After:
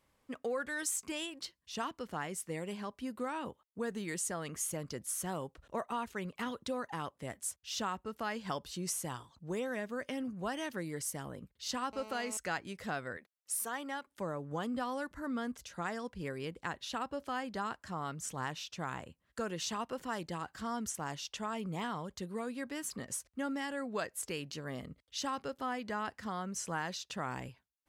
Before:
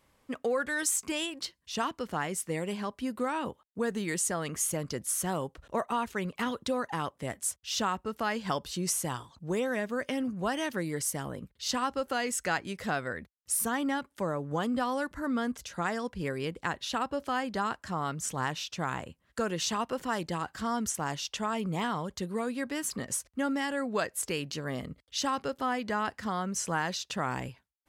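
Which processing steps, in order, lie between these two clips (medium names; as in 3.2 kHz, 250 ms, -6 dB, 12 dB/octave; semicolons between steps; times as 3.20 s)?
11.93–12.37 s: mobile phone buzz -43 dBFS; 13.17–14.07 s: high-pass 410 Hz 12 dB/octave; trim -6.5 dB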